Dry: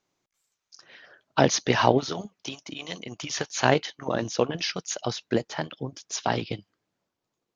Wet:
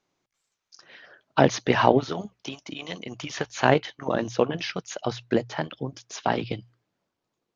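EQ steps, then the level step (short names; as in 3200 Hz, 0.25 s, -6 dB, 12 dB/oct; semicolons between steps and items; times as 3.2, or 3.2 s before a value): notches 60/120 Hz; dynamic EQ 5300 Hz, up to -7 dB, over -44 dBFS, Q 1.1; air absorption 53 m; +2.0 dB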